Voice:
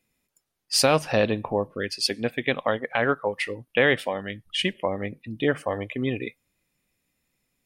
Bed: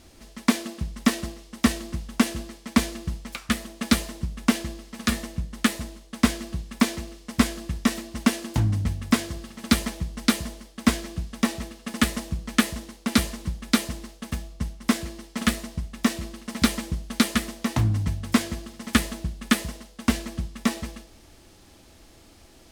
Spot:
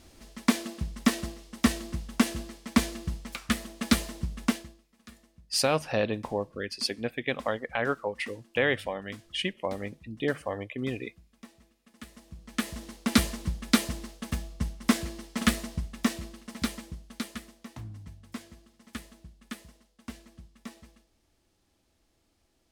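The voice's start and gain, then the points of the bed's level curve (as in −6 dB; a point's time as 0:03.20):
4.80 s, −5.5 dB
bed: 0:04.44 −3 dB
0:04.90 −26.5 dB
0:11.96 −26.5 dB
0:12.92 −1.5 dB
0:15.73 −1.5 dB
0:17.76 −19.5 dB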